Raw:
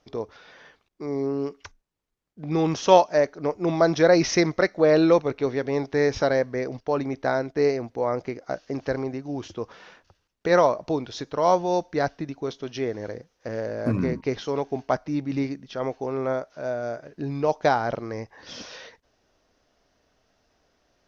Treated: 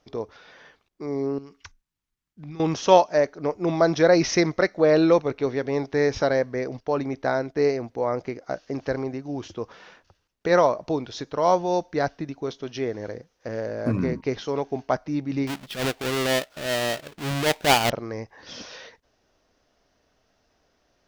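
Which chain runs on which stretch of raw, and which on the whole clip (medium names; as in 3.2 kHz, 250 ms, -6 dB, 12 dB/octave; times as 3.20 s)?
1.38–2.60 s: compression 12:1, threshold -31 dBFS + peaking EQ 520 Hz -13 dB 1.3 oct
15.47–17.90 s: square wave that keeps the level + transient shaper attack -11 dB, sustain -4 dB + peaking EQ 3.1 kHz +6 dB 1.8 oct
whole clip: none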